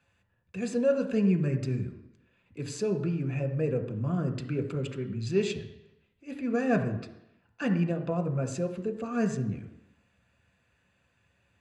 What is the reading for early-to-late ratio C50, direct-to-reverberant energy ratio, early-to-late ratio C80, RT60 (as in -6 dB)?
10.5 dB, 5.0 dB, 12.5 dB, 0.80 s